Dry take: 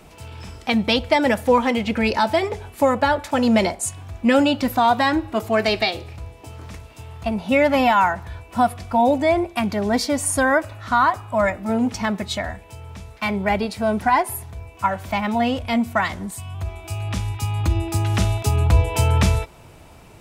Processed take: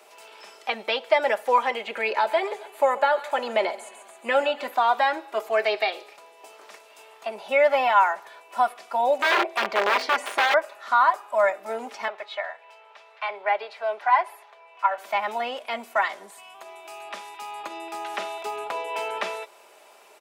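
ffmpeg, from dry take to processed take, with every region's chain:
ffmpeg -i in.wav -filter_complex "[0:a]asettb=1/sr,asplit=3[link_01][link_02][link_03];[link_01]atrim=end=1.794[link_04];[link_02]atrim=start=1.79:end=4.74,asetpts=PTS-STARTPTS,afade=type=in:duration=0.004:curve=qsin,afade=type=out:start_time=2.946:duration=0.004:curve=qsin,equalizer=frequency=5400:width=7.3:gain=-11,aecho=1:1:136|272|408|544:0.126|0.0579|0.0266|0.0123,atrim=end_sample=130095[link_05];[link_03]atrim=start=4.736[link_06];[link_04][link_05]acrossfade=duration=0.004:curve1=hsin:curve2=qsin[link_07];[link_07][link_06]acrossfade=duration=0.004:curve1=qsin:curve2=hsin,asettb=1/sr,asplit=3[link_08][link_09][link_10];[link_08]atrim=end=9.194[link_11];[link_09]atrim=start=9.19:end=10.54,asetpts=PTS-STARTPTS,afade=type=in:duration=0.004:curve=qsin,afade=type=out:start_time=1.346:duration=0.004:curve=qsin,bandreject=frequency=131.2:width_type=h:width=4,bandreject=frequency=262.4:width_type=h:width=4,bandreject=frequency=393.6:width_type=h:width=4,bandreject=frequency=524.8:width_type=h:width=4,bandreject=frequency=656:width_type=h:width=4,bandreject=frequency=787.2:width_type=h:width=4,bandreject=frequency=918.4:width_type=h:width=4,bandreject=frequency=1049.6:width_type=h:width=4,bandreject=frequency=1180.8:width_type=h:width=4,bandreject=frequency=1312:width_type=h:width=4,bandreject=frequency=1443.2:width_type=h:width=4,bandreject=frequency=1574.4:width_type=h:width=4,bandreject=frequency=1705.6:width_type=h:width=4,bandreject=frequency=1836.8:width_type=h:width=4,bandreject=frequency=1968:width_type=h:width=4,bandreject=frequency=2099.2:width_type=h:width=4,acontrast=31,aeval=exprs='(mod(3.35*val(0)+1,2)-1)/3.35':channel_layout=same[link_12];[link_10]atrim=start=10.536[link_13];[link_11][link_12]acrossfade=duration=0.004:curve1=hsin:curve2=qsin[link_14];[link_14][link_13]acrossfade=duration=0.004:curve1=qsin:curve2=hsin,asettb=1/sr,asplit=3[link_15][link_16][link_17];[link_15]atrim=end=12.084[link_18];[link_16]atrim=start=12.08:end=14.98,asetpts=PTS-STARTPTS,afade=type=in:duration=0.004:curve=qsin,afade=type=out:start_time=2.896:duration=0.004:curve=qsin,acrossover=split=490 4100:gain=0.1 1 0.0794[link_19][link_20][link_21];[link_19][link_20][link_21]amix=inputs=3:normalize=0,acompressor=mode=upward:threshold=-43dB:ratio=2.5:attack=3.2:release=140:knee=2.83:detection=peak[link_22];[link_17]atrim=start=14.976[link_23];[link_18][link_22]acrossfade=duration=0.004:curve1=hsin:curve2=qsin[link_24];[link_24][link_23]acrossfade=duration=0.004:curve1=qsin:curve2=hsin,highpass=frequency=450:width=0.5412,highpass=frequency=450:width=1.3066,aecho=1:1:5:0.4,acrossover=split=3400[link_25][link_26];[link_26]acompressor=threshold=-45dB:ratio=4:attack=1:release=60[link_27];[link_25][link_27]amix=inputs=2:normalize=0,volume=-2.5dB" out.wav

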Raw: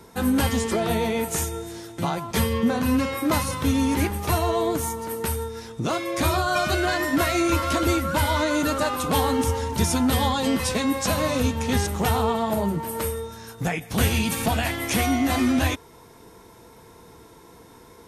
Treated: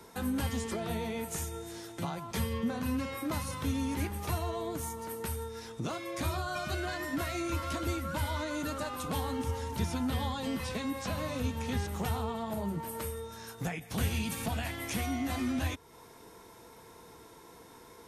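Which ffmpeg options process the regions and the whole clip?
ffmpeg -i in.wav -filter_complex "[0:a]asettb=1/sr,asplit=3[link_01][link_02][link_03];[link_01]atrim=end=9.404[link_04];[link_02]atrim=start=9.4:end=11.99,asetpts=PTS-STARTPTS,afade=type=in:duration=0.004:curve=qsin,afade=type=out:start_time=2.586:duration=0.004:curve=qsin,acrossover=split=4500[link_05][link_06];[link_06]acompressor=threshold=-41dB:ratio=4:attack=1:release=60[link_07];[link_05][link_07]amix=inputs=2:normalize=0,highshelf=frequency=9900:gain=7.5[link_08];[link_03]atrim=start=11.986[link_09];[link_04][link_08]acrossfade=duration=0.004:curve1=hsin:curve2=qsin[link_10];[link_10][link_09]acrossfade=duration=0.004:curve1=qsin:curve2=hsin,lowshelf=frequency=300:gain=-6,acrossover=split=210[link_11][link_12];[link_12]acompressor=threshold=-39dB:ratio=2[link_13];[link_11][link_13]amix=inputs=2:normalize=0,volume=-3dB" out.wav

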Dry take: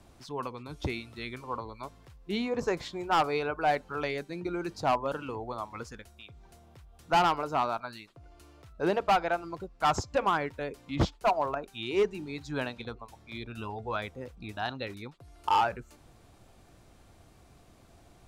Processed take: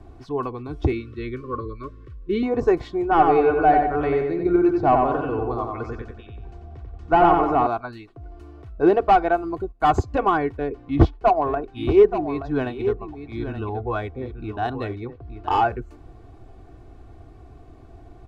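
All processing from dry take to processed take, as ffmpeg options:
ffmpeg -i in.wav -filter_complex "[0:a]asettb=1/sr,asplit=3[link_01][link_02][link_03];[link_01]atrim=end=0.924[link_04];[link_02]atrim=start=0.92:end=2.43,asetpts=PTS-STARTPTS,afade=type=in:duration=0.004:curve=qsin,afade=type=out:start_time=1.506:duration=0.004:curve=qsin,asuperstop=centerf=800:order=20:qfactor=1.8,highshelf=frequency=8500:gain=-12[link_05];[link_03]atrim=start=2.426[link_06];[link_04][link_05]acrossfade=duration=0.004:curve1=hsin:curve2=qsin[link_07];[link_07][link_06]acrossfade=duration=0.004:curve1=qsin:curve2=hsin,asettb=1/sr,asplit=3[link_08][link_09][link_10];[link_08]atrim=end=3.024[link_11];[link_09]atrim=start=3.02:end=7.67,asetpts=PTS-STARTPTS,afade=type=in:duration=0.004:curve=qsin,afade=type=out:start_time=4.646:duration=0.004:curve=qsin,lowpass=frequency=7300:width=0.5412,lowpass=frequency=7300:width=1.3066,acrossover=split=2900[link_12][link_13];[link_13]acompressor=threshold=-51dB:ratio=4:attack=1:release=60[link_14];[link_12][link_14]amix=inputs=2:normalize=0,asplit=2[link_15][link_16];[link_16]adelay=91,lowpass=frequency=3000:poles=1,volume=-3dB,asplit=2[link_17][link_18];[link_18]adelay=91,lowpass=frequency=3000:poles=1,volume=0.49,asplit=2[link_19][link_20];[link_20]adelay=91,lowpass=frequency=3000:poles=1,volume=0.49,asplit=2[link_21][link_22];[link_22]adelay=91,lowpass=frequency=3000:poles=1,volume=0.49,asplit=2[link_23][link_24];[link_24]adelay=91,lowpass=frequency=3000:poles=1,volume=0.49,asplit=2[link_25][link_26];[link_26]adelay=91,lowpass=frequency=3000:poles=1,volume=0.49[link_27];[link_15][link_17][link_19][link_21][link_23][link_25][link_27]amix=inputs=7:normalize=0,atrim=end_sample=205065[link_28];[link_10]atrim=start=7.666[link_29];[link_11][link_28]acrossfade=duration=0.004:curve1=hsin:curve2=qsin[link_30];[link_30][link_29]acrossfade=duration=0.004:curve1=qsin:curve2=hsin,asettb=1/sr,asplit=3[link_31][link_32][link_33];[link_31]atrim=end=9.244[link_34];[link_32]atrim=start=9.24:end=10.06,asetpts=PTS-STARTPTS,afade=type=in:duration=0.004:curve=qsin,afade=type=out:start_time=0.816:duration=0.004:curve=qsin,agate=range=-14dB:threshold=-51dB:ratio=16:release=100:detection=peak,asuperstop=centerf=5400:order=4:qfactor=7.9,highshelf=frequency=9800:gain=9[link_35];[link_33]atrim=start=10.056[link_36];[link_34][link_35]acrossfade=duration=0.004:curve1=hsin:curve2=qsin[link_37];[link_37][link_36]acrossfade=duration=0.004:curve1=qsin:curve2=hsin,asettb=1/sr,asplit=3[link_38][link_39][link_40];[link_38]atrim=end=10.574[link_41];[link_39]atrim=start=10.57:end=15.6,asetpts=PTS-STARTPTS,afade=type=in:duration=0.004:curve=qsin,afade=type=out:start_time=5.026:duration=0.004:curve=qsin,adynamicsmooth=sensitivity=7.5:basefreq=4400,aecho=1:1:876:0.316,atrim=end_sample=221823[link_42];[link_40]atrim=start=15.596[link_43];[link_41][link_42]acrossfade=duration=0.004:curve1=hsin:curve2=qsin[link_44];[link_44][link_43]acrossfade=duration=0.004:curve1=qsin:curve2=hsin,lowpass=frequency=1100:poles=1,lowshelf=frequency=490:gain=5.5,aecho=1:1:2.7:0.61,volume=6.5dB" out.wav

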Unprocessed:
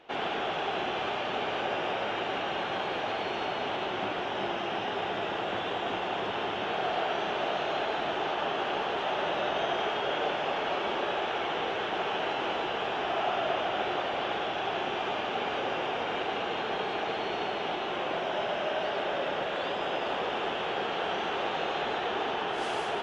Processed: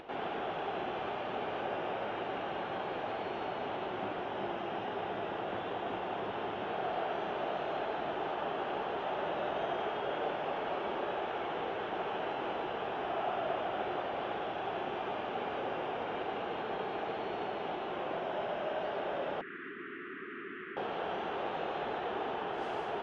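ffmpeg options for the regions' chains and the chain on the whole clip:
ffmpeg -i in.wav -filter_complex "[0:a]asettb=1/sr,asplit=3[link_01][link_02][link_03];[link_01]atrim=end=19.414[link_04];[link_02]atrim=start=19.41:end=20.77,asetpts=PTS-STARTPTS,afade=type=in:duration=0.004:curve=qsin,afade=type=out:start_time=1.356:duration=0.004:curve=qsin,asoftclip=type=hard:threshold=-30dB,asuperstop=centerf=680:order=12:qfactor=0.89,highpass=240,equalizer=frequency=260:width_type=q:width=4:gain=3,equalizer=frequency=460:width_type=q:width=4:gain=3,equalizer=frequency=750:width_type=q:width=4:gain=-10,equalizer=frequency=1100:width_type=q:width=4:gain=-3,equalizer=frequency=1900:width_type=q:width=4:gain=7,lowpass=frequency=2300:width=0.5412,lowpass=frequency=2300:width=1.3066[link_05];[link_03]atrim=start=20.766[link_06];[link_04][link_05]acrossfade=duration=0.004:curve1=hsin:curve2=qsin[link_07];[link_07][link_06]acrossfade=duration=0.004:curve1=qsin:curve2=hsin,lowpass=frequency=1300:poles=1,acompressor=mode=upward:threshold=-37dB:ratio=2.5,volume=-3.5dB" out.wav

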